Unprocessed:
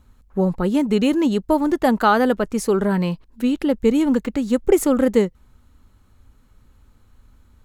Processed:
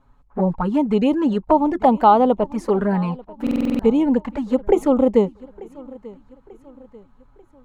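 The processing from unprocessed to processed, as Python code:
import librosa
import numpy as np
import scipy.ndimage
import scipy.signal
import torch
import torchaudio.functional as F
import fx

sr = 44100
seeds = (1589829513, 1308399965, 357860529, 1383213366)

p1 = fx.lowpass(x, sr, hz=1900.0, slope=6)
p2 = fx.peak_eq(p1, sr, hz=910.0, db=11.0, octaves=1.1)
p3 = fx.notch(p2, sr, hz=360.0, q=12.0)
p4 = fx.env_flanger(p3, sr, rest_ms=7.5, full_db=-12.0)
p5 = p4 + fx.echo_feedback(p4, sr, ms=890, feedback_pct=45, wet_db=-21.5, dry=0)
y = fx.buffer_glitch(p5, sr, at_s=(3.42,), block=2048, repeats=7)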